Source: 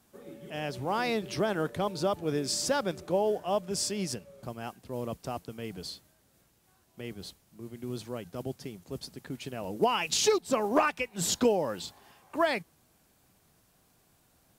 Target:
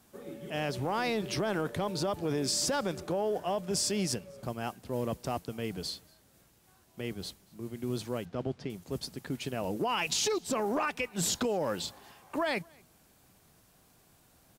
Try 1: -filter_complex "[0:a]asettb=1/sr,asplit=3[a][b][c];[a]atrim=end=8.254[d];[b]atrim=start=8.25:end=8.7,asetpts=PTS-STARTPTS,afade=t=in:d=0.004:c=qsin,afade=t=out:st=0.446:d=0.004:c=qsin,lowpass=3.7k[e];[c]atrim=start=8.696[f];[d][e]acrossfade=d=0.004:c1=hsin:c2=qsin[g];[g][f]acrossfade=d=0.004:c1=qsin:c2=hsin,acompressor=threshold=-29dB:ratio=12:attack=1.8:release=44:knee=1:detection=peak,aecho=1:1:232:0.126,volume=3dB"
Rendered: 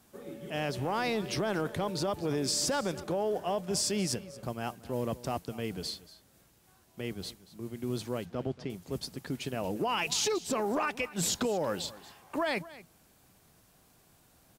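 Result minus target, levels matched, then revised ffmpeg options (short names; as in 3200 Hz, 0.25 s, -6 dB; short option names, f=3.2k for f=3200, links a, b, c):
echo-to-direct +10.5 dB
-filter_complex "[0:a]asettb=1/sr,asplit=3[a][b][c];[a]atrim=end=8.254[d];[b]atrim=start=8.25:end=8.7,asetpts=PTS-STARTPTS,afade=t=in:d=0.004:c=qsin,afade=t=out:st=0.446:d=0.004:c=qsin,lowpass=3.7k[e];[c]atrim=start=8.696[f];[d][e]acrossfade=d=0.004:c1=hsin:c2=qsin[g];[g][f]acrossfade=d=0.004:c1=qsin:c2=hsin,acompressor=threshold=-29dB:ratio=12:attack=1.8:release=44:knee=1:detection=peak,aecho=1:1:232:0.0376,volume=3dB"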